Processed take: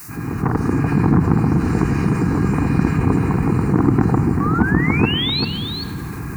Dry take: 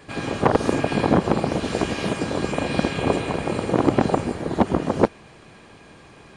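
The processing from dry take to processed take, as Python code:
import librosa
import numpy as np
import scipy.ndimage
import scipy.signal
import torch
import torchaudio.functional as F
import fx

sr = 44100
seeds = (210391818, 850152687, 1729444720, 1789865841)

y = fx.fade_in_head(x, sr, length_s=1.04)
y = scipy.signal.sosfilt(scipy.signal.butter(2, 56.0, 'highpass', fs=sr, output='sos'), y)
y = fx.tilt_eq(y, sr, slope=-2.5)
y = fx.quant_dither(y, sr, seeds[0], bits=10, dither='triangular')
y = fx.fixed_phaser(y, sr, hz=1400.0, stages=4)
y = fx.spec_paint(y, sr, seeds[1], shape='rise', start_s=4.4, length_s=1.05, low_hz=1100.0, high_hz=4500.0, level_db=-30.0)
y = y + 10.0 ** (-13.0 / 20.0) * np.pad(y, (int(390 * sr / 1000.0), 0))[:len(y)]
y = fx.room_shoebox(y, sr, seeds[2], volume_m3=2700.0, walls='mixed', distance_m=0.48)
y = fx.env_flatten(y, sr, amount_pct=50)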